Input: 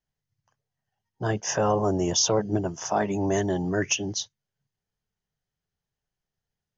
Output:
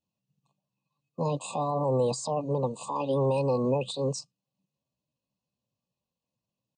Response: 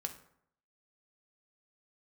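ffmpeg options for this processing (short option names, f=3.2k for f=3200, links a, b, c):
-af "alimiter=limit=-21.5dB:level=0:latency=1:release=131,adynamicequalizer=threshold=0.00562:dfrequency=900:dqfactor=2.5:tfrequency=900:tqfactor=2.5:attack=5:release=100:ratio=0.375:range=1.5:mode=boostabove:tftype=bell,afftfilt=real='re*(1-between(b*sr/4096,860,1800))':imag='im*(1-between(b*sr/4096,860,1800))':win_size=4096:overlap=0.75,asetrate=60591,aresample=44100,atempo=0.727827,highpass=100,equalizer=f=130:t=q:w=4:g=8,equalizer=f=510:t=q:w=4:g=7,equalizer=f=2k:t=q:w=4:g=8,lowpass=f=6.6k:w=0.5412,lowpass=f=6.6k:w=1.3066"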